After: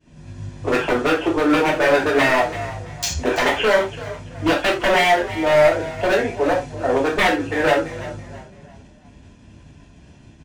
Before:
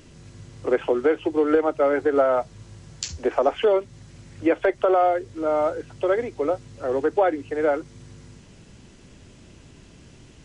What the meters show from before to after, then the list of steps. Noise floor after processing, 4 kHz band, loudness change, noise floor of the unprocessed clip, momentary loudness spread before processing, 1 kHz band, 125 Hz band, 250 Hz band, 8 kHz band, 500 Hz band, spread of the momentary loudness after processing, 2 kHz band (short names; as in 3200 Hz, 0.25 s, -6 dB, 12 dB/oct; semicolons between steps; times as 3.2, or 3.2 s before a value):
-48 dBFS, +14.5 dB, +4.0 dB, -49 dBFS, 8 LU, +5.0 dB, +10.5 dB, +4.5 dB, n/a, +2.5 dB, 14 LU, +13.5 dB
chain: HPF 44 Hz; expander -42 dBFS; comb 1.2 ms, depth 42%; wavefolder -19.5 dBFS; on a send: frequency-shifting echo 0.334 s, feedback 38%, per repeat +36 Hz, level -14.5 dB; on the sum: non-linear reverb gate 0.11 s falling, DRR -2.5 dB; mismatched tape noise reduction decoder only; gain +5 dB